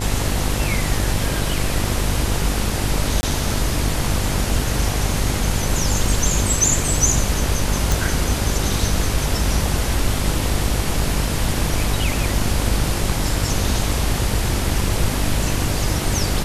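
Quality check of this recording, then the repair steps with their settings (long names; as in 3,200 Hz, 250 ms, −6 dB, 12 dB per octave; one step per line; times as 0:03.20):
mains buzz 50 Hz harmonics 20 −24 dBFS
0:03.21–0:03.23: drop-out 20 ms
0:07.92: click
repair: click removal
hum removal 50 Hz, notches 20
repair the gap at 0:03.21, 20 ms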